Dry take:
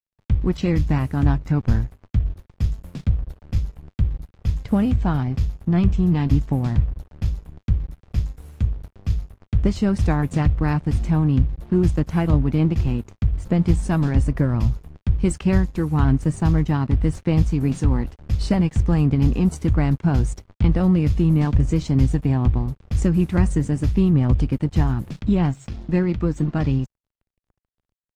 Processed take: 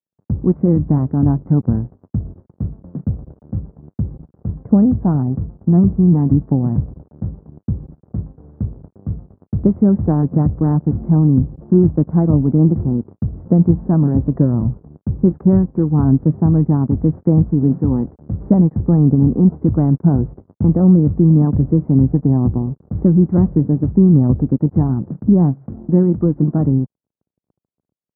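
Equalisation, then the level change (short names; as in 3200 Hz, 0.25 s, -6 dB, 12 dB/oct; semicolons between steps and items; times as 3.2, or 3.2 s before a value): Gaussian blur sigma 8.6 samples; HPF 170 Hz 12 dB/oct; low shelf 480 Hz +8.5 dB; +2.5 dB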